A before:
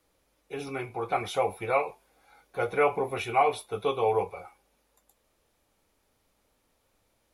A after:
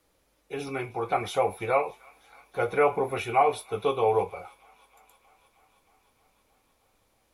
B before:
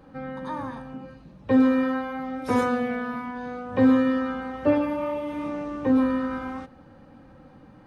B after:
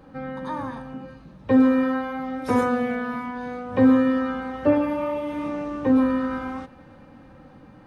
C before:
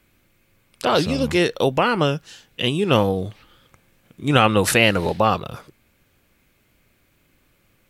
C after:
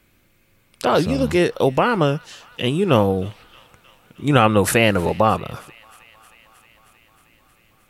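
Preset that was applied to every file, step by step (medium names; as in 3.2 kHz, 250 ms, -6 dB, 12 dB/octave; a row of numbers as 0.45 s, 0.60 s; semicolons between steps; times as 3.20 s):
dynamic bell 4.1 kHz, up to -7 dB, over -38 dBFS, Q 0.74; feedback echo behind a high-pass 313 ms, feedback 75%, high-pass 1.4 kHz, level -22.5 dB; trim +2 dB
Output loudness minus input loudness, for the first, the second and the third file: +1.5 LU, +2.0 LU, +1.0 LU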